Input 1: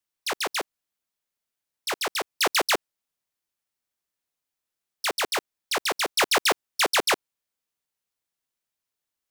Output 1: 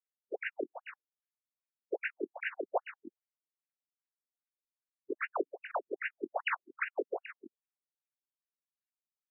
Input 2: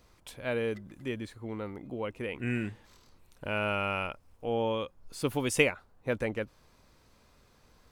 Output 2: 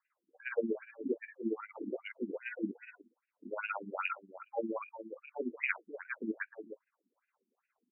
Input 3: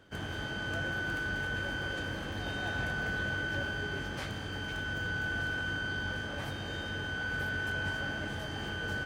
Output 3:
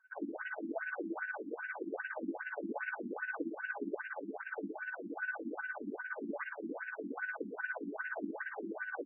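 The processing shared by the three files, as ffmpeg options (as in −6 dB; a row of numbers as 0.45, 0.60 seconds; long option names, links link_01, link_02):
-filter_complex "[0:a]asplit=2[link_01][link_02];[link_02]adelay=21,volume=-5dB[link_03];[link_01][link_03]amix=inputs=2:normalize=0,areverse,acompressor=threshold=-34dB:ratio=6,areverse,tremolo=f=17:d=0.71,afftdn=noise_reduction=19:noise_floor=-52,asplit=2[link_04][link_05];[link_05]aecho=0:1:301:0.266[link_06];[link_04][link_06]amix=inputs=2:normalize=0,afftfilt=real='re*between(b*sr/1024,260*pow(2100/260,0.5+0.5*sin(2*PI*2.5*pts/sr))/1.41,260*pow(2100/260,0.5+0.5*sin(2*PI*2.5*pts/sr))*1.41)':imag='im*between(b*sr/1024,260*pow(2100/260,0.5+0.5*sin(2*PI*2.5*pts/sr))/1.41,260*pow(2100/260,0.5+0.5*sin(2*PI*2.5*pts/sr))*1.41)':win_size=1024:overlap=0.75,volume=9.5dB"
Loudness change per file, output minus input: −13.0, −6.0, −6.0 LU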